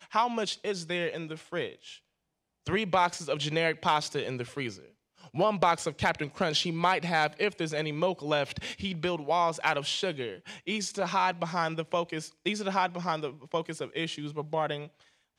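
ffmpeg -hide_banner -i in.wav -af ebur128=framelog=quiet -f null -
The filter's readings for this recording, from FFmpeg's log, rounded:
Integrated loudness:
  I:         -30.2 LUFS
  Threshold: -40.5 LUFS
Loudness range:
  LRA:         3.6 LU
  Threshold: -50.2 LUFS
  LRA low:   -32.2 LUFS
  LRA high:  -28.6 LUFS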